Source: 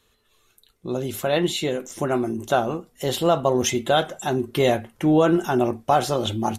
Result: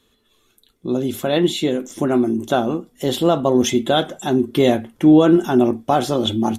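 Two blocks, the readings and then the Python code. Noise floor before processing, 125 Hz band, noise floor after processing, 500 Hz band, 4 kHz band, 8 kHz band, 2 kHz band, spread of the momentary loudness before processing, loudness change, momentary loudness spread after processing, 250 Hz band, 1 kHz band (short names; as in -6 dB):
-65 dBFS, +3.0 dB, -62 dBFS, +3.5 dB, +3.5 dB, 0.0 dB, 0.0 dB, 9 LU, +4.5 dB, 10 LU, +8.0 dB, +1.0 dB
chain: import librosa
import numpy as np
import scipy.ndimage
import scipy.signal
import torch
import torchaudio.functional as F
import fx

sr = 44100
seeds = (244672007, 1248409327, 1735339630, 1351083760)

y = fx.small_body(x, sr, hz=(260.0, 3400.0), ring_ms=20, db=10)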